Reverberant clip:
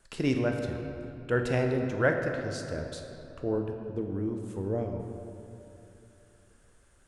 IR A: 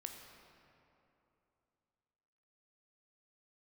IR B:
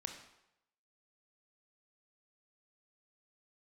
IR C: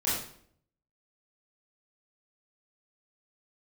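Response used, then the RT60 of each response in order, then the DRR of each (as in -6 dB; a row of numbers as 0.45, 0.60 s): A; 2.9, 0.85, 0.60 s; 3.0, 4.0, -10.0 dB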